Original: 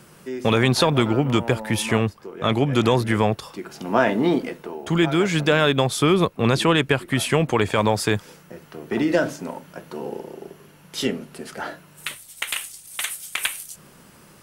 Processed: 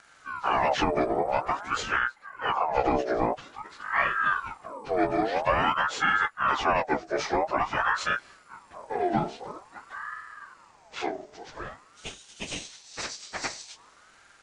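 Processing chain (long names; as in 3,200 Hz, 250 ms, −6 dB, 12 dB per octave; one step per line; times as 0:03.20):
phase-vocoder pitch shift without resampling −10.5 semitones
ring modulator whose carrier an LFO sweeps 1,000 Hz, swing 50%, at 0.49 Hz
level −2.5 dB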